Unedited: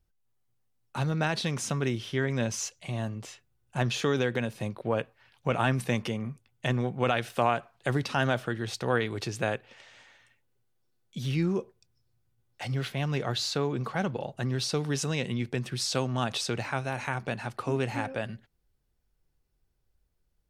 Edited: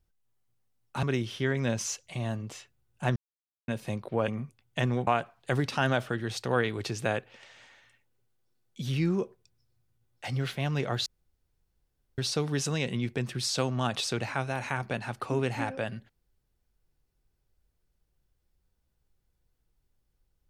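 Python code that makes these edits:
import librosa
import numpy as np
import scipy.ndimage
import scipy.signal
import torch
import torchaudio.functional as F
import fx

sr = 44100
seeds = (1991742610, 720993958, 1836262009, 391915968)

y = fx.edit(x, sr, fx.cut(start_s=1.03, length_s=0.73),
    fx.silence(start_s=3.89, length_s=0.52),
    fx.cut(start_s=5.01, length_s=1.14),
    fx.cut(start_s=6.94, length_s=0.5),
    fx.room_tone_fill(start_s=13.43, length_s=1.12), tone=tone)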